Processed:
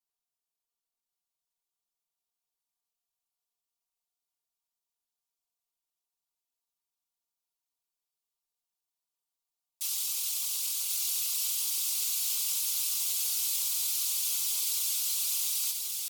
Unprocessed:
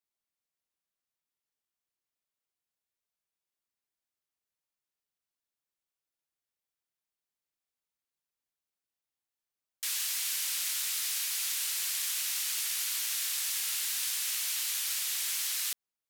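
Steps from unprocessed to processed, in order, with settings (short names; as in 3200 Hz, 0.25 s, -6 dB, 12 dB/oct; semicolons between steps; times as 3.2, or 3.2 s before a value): bell 180 Hz -4.5 dB 1.1 oct; comb 4.9 ms, depth 67%; pitch shift +2.5 st; fixed phaser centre 350 Hz, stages 8; on a send: thinning echo 1.085 s, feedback 55%, high-pass 490 Hz, level -4 dB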